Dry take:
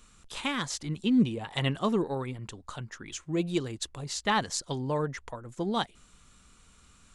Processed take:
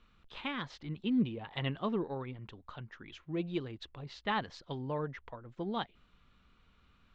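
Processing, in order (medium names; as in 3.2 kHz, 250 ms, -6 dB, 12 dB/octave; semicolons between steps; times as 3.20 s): low-pass 3.7 kHz 24 dB/octave; trim -6.5 dB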